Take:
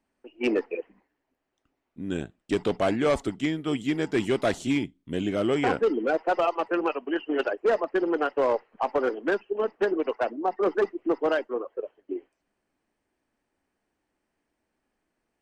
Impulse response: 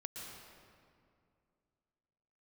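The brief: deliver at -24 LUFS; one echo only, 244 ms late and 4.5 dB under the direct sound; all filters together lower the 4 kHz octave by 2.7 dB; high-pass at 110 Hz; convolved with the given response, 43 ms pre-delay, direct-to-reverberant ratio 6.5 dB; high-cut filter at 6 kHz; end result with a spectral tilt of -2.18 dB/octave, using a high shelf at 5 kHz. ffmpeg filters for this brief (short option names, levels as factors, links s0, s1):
-filter_complex "[0:a]highpass=110,lowpass=6000,equalizer=f=4000:t=o:g=-6.5,highshelf=f=5000:g=7,aecho=1:1:244:0.596,asplit=2[s0][s1];[1:a]atrim=start_sample=2205,adelay=43[s2];[s1][s2]afir=irnorm=-1:irlink=0,volume=0.596[s3];[s0][s3]amix=inputs=2:normalize=0,volume=1.12"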